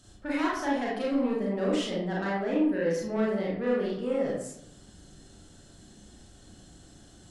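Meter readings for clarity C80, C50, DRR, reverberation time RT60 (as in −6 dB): 5.0 dB, 1.0 dB, −5.5 dB, 0.75 s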